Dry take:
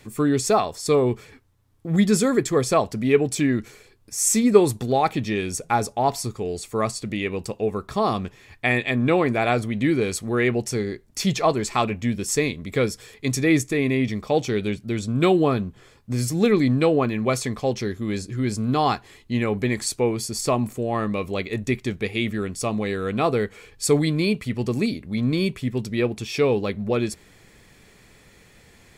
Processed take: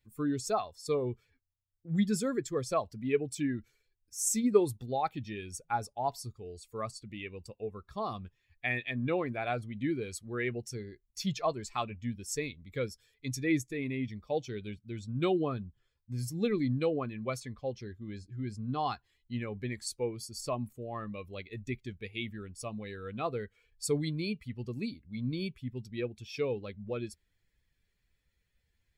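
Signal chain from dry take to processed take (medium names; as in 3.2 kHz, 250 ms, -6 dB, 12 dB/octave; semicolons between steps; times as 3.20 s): expander on every frequency bin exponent 1.5; 17.40–18.85 s: treble shelf 5.3 kHz -9 dB; trim -8.5 dB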